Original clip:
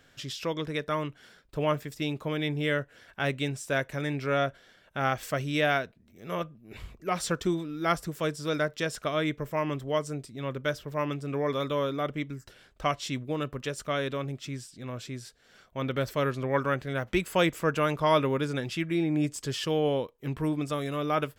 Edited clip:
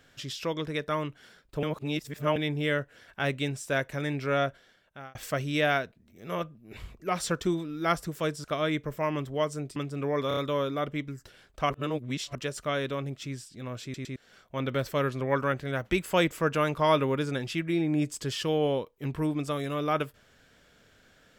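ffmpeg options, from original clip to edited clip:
-filter_complex "[0:a]asplit=14[a][b][c][d][e][f][g][h][i][j][k][l][m][n];[a]atrim=end=1.632[o];[b]atrim=start=1.628:end=2.362,asetpts=PTS-STARTPTS,areverse[p];[c]atrim=start=2.358:end=5.15,asetpts=PTS-STARTPTS,afade=t=out:st=2.102:d=0.69[q];[d]atrim=start=5.15:end=8.442,asetpts=PTS-STARTPTS,afade=t=in:d=0.004:c=hsin[r];[e]atrim=start=8.978:end=10.302[s];[f]atrim=start=11.068:end=11.622[t];[g]atrim=start=11.588:end=11.622[u];[h]atrim=start=11.588:end=11.622[v];[i]atrim=start=11.588:end=12.922[w];[j]atrim=start=12.918:end=13.572,asetpts=PTS-STARTPTS,areverse[x];[k]atrim=start=13.568:end=15.162[y];[l]atrim=start=15.048:end=15.162[z];[m]atrim=start=15.048:end=15.162[aa];[n]atrim=start=15.378[ab];[o][p]acrossfade=d=0.004:c1=hsin:c2=hsin[ac];[q][r]concat=n=2:v=0:a=1[ad];[ac][ad]acrossfade=d=0.004:c1=hsin:c2=hsin[ae];[ae][s]acrossfade=d=0.004:c1=hsin:c2=hsin[af];[af][t]acrossfade=d=0.004:c1=hsin:c2=hsin[ag];[ag][u]acrossfade=d=0.004:c1=hsin:c2=hsin[ah];[ah][v]acrossfade=d=0.004:c1=hsin:c2=hsin[ai];[ai][w]acrossfade=d=0.004:c1=hsin:c2=hsin[aj];[aj][x]acrossfade=d=0.004:c1=hsin:c2=hsin[ak];[ak][y]acrossfade=d=0.004:c1=hsin:c2=hsin[al];[al][z]acrossfade=d=0.004:c1=hsin:c2=hsin[am];[am][aa]acrossfade=d=0.004:c1=hsin:c2=hsin[an];[an][ab]acrossfade=d=0.004:c1=hsin:c2=hsin"

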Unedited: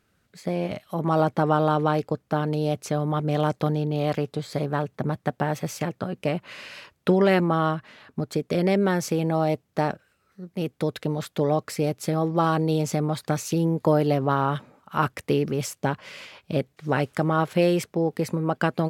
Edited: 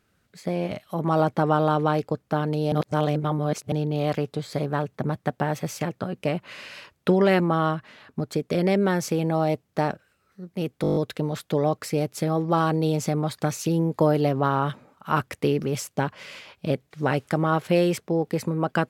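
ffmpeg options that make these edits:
-filter_complex "[0:a]asplit=10[a][b][c][d][e][f][g][h][i][j];[a]atrim=end=2.722[k];[b]atrim=start=2.718:end=3.722,asetpts=PTS-STARTPTS,areverse[l];[c]atrim=start=3.718:end=10.842[m];[d]atrim=start=10.818:end=10.842[n];[e]atrim=start=10.818:end=10.842[o];[f]atrim=start=10.818:end=10.842[p];[g]atrim=start=10.818:end=10.842[q];[h]atrim=start=10.818:end=10.842[r];[i]atrim=start=10.818:end=10.842[s];[j]atrim=start=10.818[t];[k][l]acrossfade=d=0.004:c1=hsin:c2=hsin[u];[u][m]acrossfade=d=0.004:c1=hsin:c2=hsin[v];[v][n]acrossfade=d=0.004:c1=hsin:c2=hsin[w];[w][o]acrossfade=d=0.004:c1=hsin:c2=hsin[x];[x][p]acrossfade=d=0.004:c1=hsin:c2=hsin[y];[y][q]acrossfade=d=0.004:c1=hsin:c2=hsin[z];[z][r]acrossfade=d=0.004:c1=hsin:c2=hsin[aa];[aa][s]acrossfade=d=0.004:c1=hsin:c2=hsin[ab];[ab][t]acrossfade=d=0.004:c1=hsin:c2=hsin"

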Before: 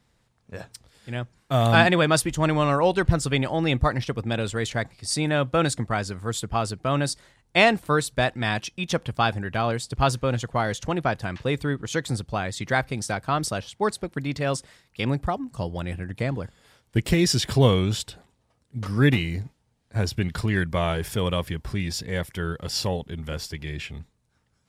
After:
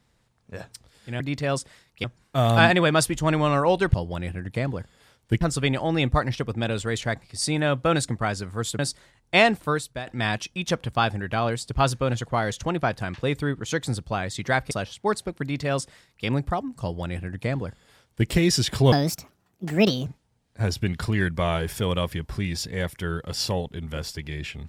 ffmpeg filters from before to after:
-filter_complex "[0:a]asplit=10[a][b][c][d][e][f][g][h][i][j];[a]atrim=end=1.202[k];[b]atrim=start=14.178:end=15.022[l];[c]atrim=start=1.198:end=3.102[m];[d]atrim=start=15.578:end=17.052[n];[e]atrim=start=3.098:end=6.482[o];[f]atrim=start=7.008:end=8.29,asetpts=PTS-STARTPTS,afade=t=out:st=0.772:d=0.51:silence=0.16788[p];[g]atrim=start=8.29:end=12.932,asetpts=PTS-STARTPTS,afade=t=in:d=0.004:c=hsin:silence=0.16788[q];[h]atrim=start=13.468:end=17.684[r];[i]atrim=start=17.68:end=19.42,asetpts=PTS-STARTPTS,asetrate=67032,aresample=44100[s];[j]atrim=start=19.416[t];[k][l]acrossfade=d=0.004:c1=hsin:c2=hsin[u];[u][m]acrossfade=d=0.004:c1=hsin:c2=hsin[v];[v][n]acrossfade=d=0.004:c1=hsin:c2=hsin[w];[w][o]acrossfade=d=0.004:c1=hsin:c2=hsin[x];[p][q]concat=n=2:v=0:a=1[y];[x][y]acrossfade=d=0.004:c1=hsin:c2=hsin[z];[z][r]acrossfade=d=0.004:c1=hsin:c2=hsin[aa];[aa][s]acrossfade=d=0.004:c1=hsin:c2=hsin[ab];[ab][t]acrossfade=d=0.004:c1=hsin:c2=hsin"

